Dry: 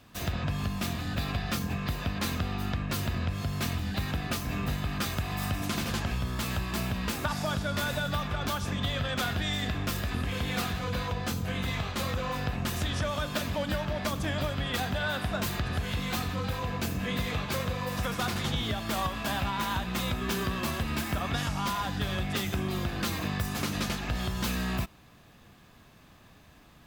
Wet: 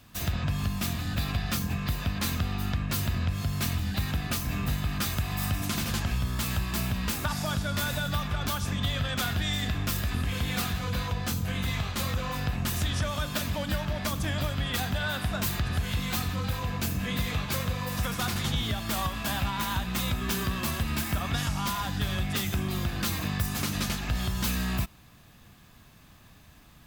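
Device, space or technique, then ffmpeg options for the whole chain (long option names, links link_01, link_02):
smiley-face EQ: -af "lowshelf=frequency=180:gain=4,equalizer=frequency=450:width_type=o:width=1.5:gain=-4,highshelf=frequency=6400:gain=7"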